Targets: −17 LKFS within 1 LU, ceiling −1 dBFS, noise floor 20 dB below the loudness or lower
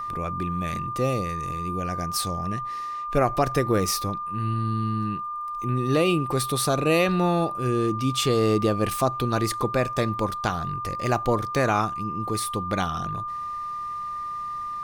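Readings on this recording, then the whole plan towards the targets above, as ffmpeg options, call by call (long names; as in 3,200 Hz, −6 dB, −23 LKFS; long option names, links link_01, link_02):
interfering tone 1,200 Hz; level of the tone −29 dBFS; integrated loudness −25.5 LKFS; sample peak −10.0 dBFS; target loudness −17.0 LKFS
→ -af "bandreject=frequency=1200:width=30"
-af "volume=8.5dB"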